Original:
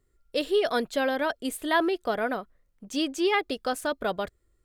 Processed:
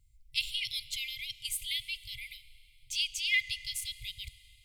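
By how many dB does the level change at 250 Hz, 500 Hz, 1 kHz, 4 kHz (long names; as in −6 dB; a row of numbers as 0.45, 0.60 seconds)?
below −40 dB, below −40 dB, below −40 dB, +2.5 dB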